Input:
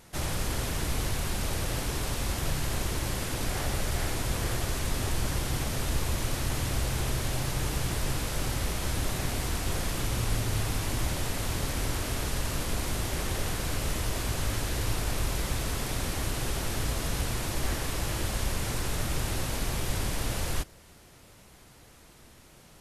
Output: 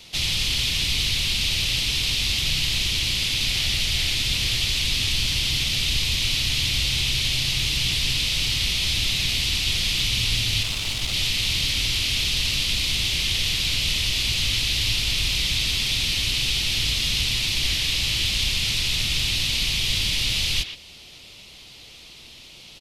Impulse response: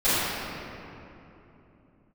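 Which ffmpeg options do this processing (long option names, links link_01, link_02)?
-filter_complex "[0:a]equalizer=frequency=2300:width=0.48:gain=-2.5,acrossover=split=240|1400|4200[link_01][link_02][link_03][link_04];[link_02]acompressor=threshold=-50dB:ratio=6[link_05];[link_03]aexciter=amount=15.9:drive=4.4:freq=2400[link_06];[link_01][link_05][link_06][link_04]amix=inputs=4:normalize=0,asettb=1/sr,asplit=3[link_07][link_08][link_09];[link_07]atrim=end=10.634[link_10];[link_08]atrim=start=10.63:end=11.14,asetpts=PTS-STARTPTS,afade=type=in:duration=0.004:curve=qsin,afade=type=out:start_time=0.506:duration=0.004:curve=qsin,aeval=exprs='(tanh(8.91*val(0)+0.7)-tanh(0.7))/8.91':channel_layout=same[link_11];[link_09]atrim=start=11.136[link_12];[link_10][link_11]acrossfade=duration=0.004:curve1=hsin:curve2=qsin[link_13];[link_13][link_12]acrossfade=duration=0.004:curve1=qsin:curve2=hsin,asplit=2[link_14][link_15];[link_15]adelay=120,highpass=300,lowpass=3400,asoftclip=type=hard:threshold=-19.5dB,volume=-7dB[link_16];[link_14][link_16]amix=inputs=2:normalize=0,volume=1.5dB"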